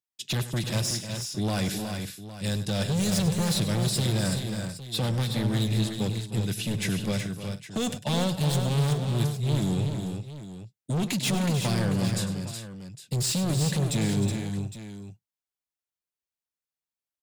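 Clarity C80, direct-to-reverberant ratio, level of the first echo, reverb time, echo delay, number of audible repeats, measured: none, none, -13.0 dB, none, 0.1 s, 5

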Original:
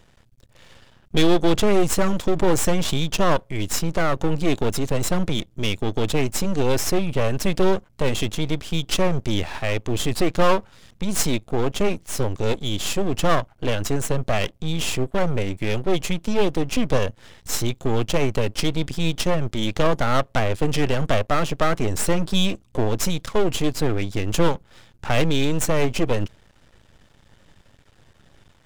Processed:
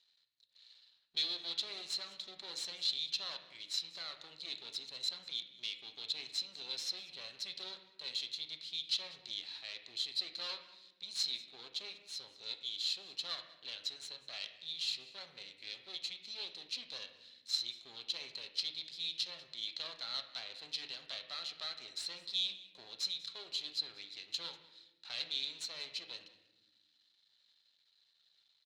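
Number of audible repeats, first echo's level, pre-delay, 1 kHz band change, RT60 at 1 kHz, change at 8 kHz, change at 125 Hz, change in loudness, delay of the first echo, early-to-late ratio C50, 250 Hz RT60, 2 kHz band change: 1, -19.5 dB, 5 ms, -30.0 dB, 0.85 s, -20.0 dB, under -40 dB, -16.0 dB, 0.193 s, 9.5 dB, 1.9 s, -20.5 dB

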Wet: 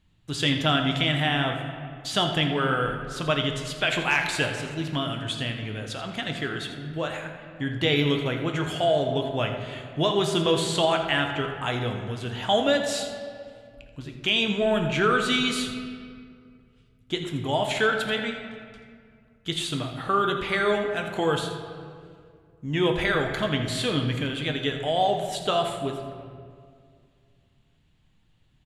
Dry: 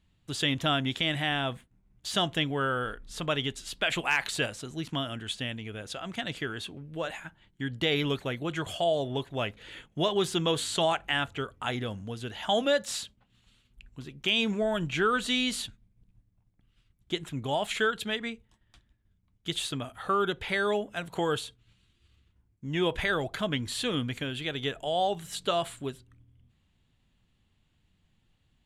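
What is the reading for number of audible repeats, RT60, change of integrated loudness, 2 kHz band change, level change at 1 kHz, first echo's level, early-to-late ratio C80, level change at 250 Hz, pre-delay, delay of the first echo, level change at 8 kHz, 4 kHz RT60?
1, 2.2 s, +4.5 dB, +4.5 dB, +5.0 dB, -13.0 dB, 6.5 dB, +5.0 dB, 7 ms, 83 ms, +2.0 dB, 1.3 s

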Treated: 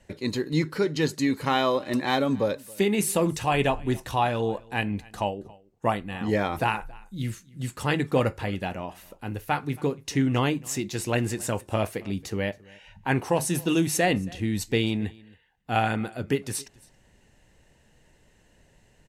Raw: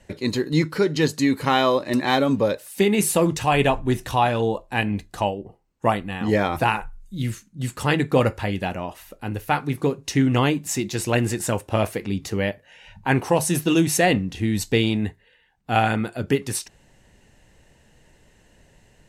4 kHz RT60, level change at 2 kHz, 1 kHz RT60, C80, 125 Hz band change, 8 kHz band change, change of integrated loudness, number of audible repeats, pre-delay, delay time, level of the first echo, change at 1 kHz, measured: none, -4.5 dB, none, none, -4.5 dB, -4.5 dB, -4.5 dB, 1, none, 0.274 s, -24.0 dB, -4.5 dB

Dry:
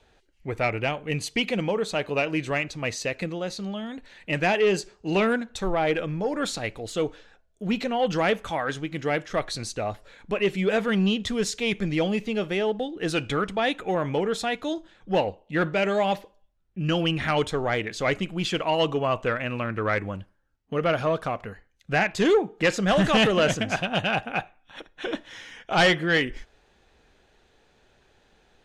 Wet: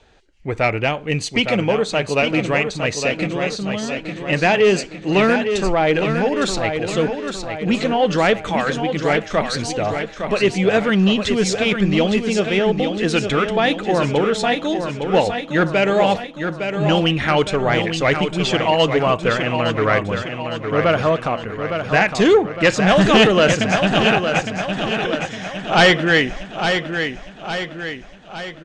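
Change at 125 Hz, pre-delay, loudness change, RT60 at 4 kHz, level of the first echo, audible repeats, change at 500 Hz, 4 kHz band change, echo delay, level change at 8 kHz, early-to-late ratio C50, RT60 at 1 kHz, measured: +8.0 dB, none, +7.5 dB, none, -7.0 dB, 5, +8.0 dB, +8.0 dB, 0.86 s, +7.5 dB, none, none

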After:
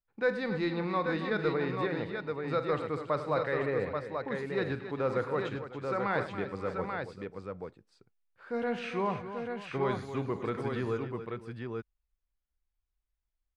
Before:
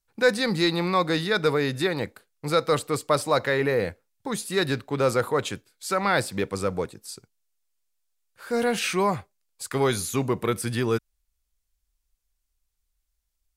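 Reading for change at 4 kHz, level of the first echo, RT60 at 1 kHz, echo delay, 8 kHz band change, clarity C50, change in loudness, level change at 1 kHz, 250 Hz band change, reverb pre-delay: -16.0 dB, -13.0 dB, none, 46 ms, under -25 dB, none, -8.0 dB, -7.0 dB, -6.5 dB, none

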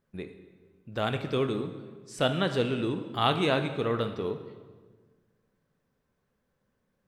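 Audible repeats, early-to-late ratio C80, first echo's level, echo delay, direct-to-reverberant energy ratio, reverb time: none, 11.0 dB, none, none, 7.5 dB, 1.5 s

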